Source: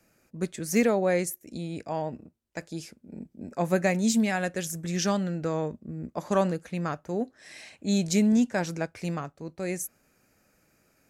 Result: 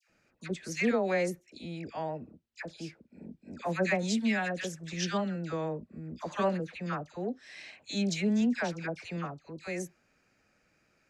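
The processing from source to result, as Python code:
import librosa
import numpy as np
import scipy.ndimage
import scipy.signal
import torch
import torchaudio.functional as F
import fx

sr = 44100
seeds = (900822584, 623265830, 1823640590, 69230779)

y = scipy.signal.sosfilt(scipy.signal.butter(2, 3400.0, 'lowpass', fs=sr, output='sos'), x)
y = fx.high_shelf(y, sr, hz=2000.0, db=11.0)
y = fx.dispersion(y, sr, late='lows', ms=89.0, hz=1300.0)
y = F.gain(torch.from_numpy(y), -5.5).numpy()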